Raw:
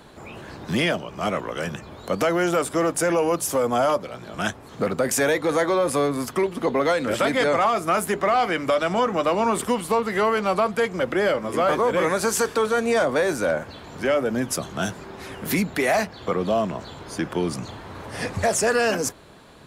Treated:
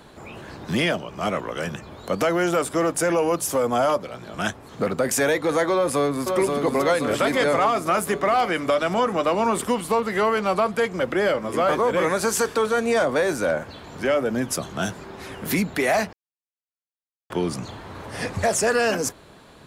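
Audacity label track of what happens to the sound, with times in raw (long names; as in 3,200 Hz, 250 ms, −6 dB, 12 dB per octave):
5.730000	6.320000	delay throw 530 ms, feedback 65%, level −4 dB
16.130000	17.300000	silence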